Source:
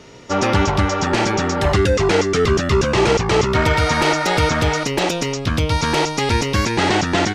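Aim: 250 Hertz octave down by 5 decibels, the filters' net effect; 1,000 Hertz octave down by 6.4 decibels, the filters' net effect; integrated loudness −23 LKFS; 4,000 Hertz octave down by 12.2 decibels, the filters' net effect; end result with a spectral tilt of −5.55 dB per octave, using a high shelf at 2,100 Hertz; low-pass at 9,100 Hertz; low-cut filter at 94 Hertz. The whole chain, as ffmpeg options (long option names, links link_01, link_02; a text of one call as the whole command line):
ffmpeg -i in.wav -af "highpass=94,lowpass=9100,equalizer=frequency=250:width_type=o:gain=-6.5,equalizer=frequency=1000:width_type=o:gain=-5.5,highshelf=frequency=2100:gain=-8,equalizer=frequency=4000:width_type=o:gain=-8,volume=-0.5dB" out.wav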